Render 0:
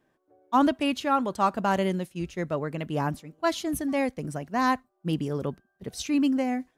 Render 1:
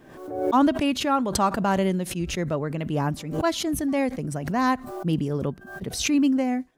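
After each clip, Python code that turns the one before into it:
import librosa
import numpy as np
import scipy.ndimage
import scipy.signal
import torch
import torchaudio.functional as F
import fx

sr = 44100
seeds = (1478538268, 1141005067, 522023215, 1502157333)

y = fx.low_shelf(x, sr, hz=400.0, db=4.5)
y = fx.pre_swell(y, sr, db_per_s=65.0)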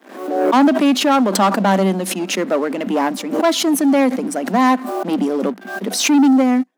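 y = fx.leveller(x, sr, passes=3)
y = scipy.signal.sosfilt(scipy.signal.cheby1(6, 3, 190.0, 'highpass', fs=sr, output='sos'), y)
y = y * 10.0 ** (2.5 / 20.0)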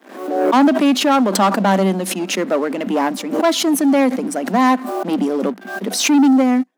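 y = x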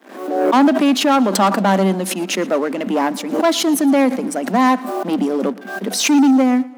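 y = fx.echo_feedback(x, sr, ms=115, feedback_pct=53, wet_db=-21.5)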